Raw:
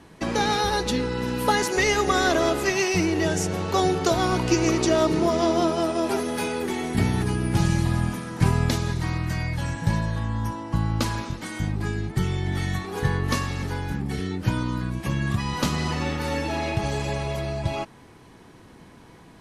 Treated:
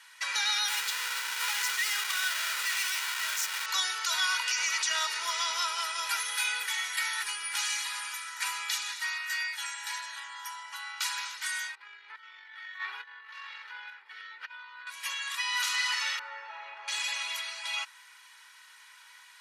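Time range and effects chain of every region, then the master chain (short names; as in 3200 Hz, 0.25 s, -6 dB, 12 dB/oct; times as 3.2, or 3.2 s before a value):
0.68–3.66 half-waves squared off + low shelf 160 Hz +8.5 dB + Doppler distortion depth 0.1 ms
8.12–11.18 low shelf 150 Hz -12 dB + notch comb 530 Hz
11.75–14.87 negative-ratio compressor -33 dBFS + air absorption 370 m
16.19–16.88 LPF 1000 Hz + doubler 23 ms -12.5 dB
whole clip: HPF 1400 Hz 24 dB/oct; limiter -23.5 dBFS; comb 2.1 ms, depth 63%; gain +3.5 dB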